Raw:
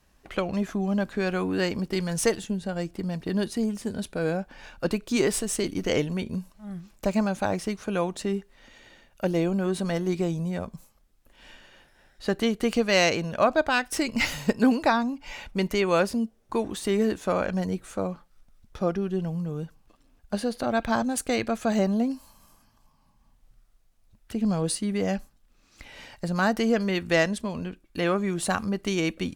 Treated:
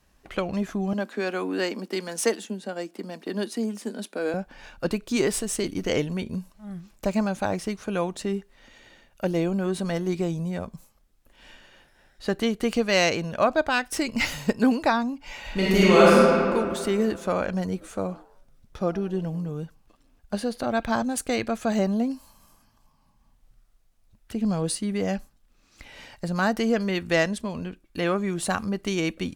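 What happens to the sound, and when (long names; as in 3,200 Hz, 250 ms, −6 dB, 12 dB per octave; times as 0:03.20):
0:00.93–0:04.34: Butterworth high-pass 210 Hz 48 dB per octave
0:15.40–0:16.15: thrown reverb, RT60 2.3 s, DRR −8.5 dB
0:17.71–0:19.51: echo with shifted repeats 101 ms, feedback 40%, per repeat +130 Hz, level −20.5 dB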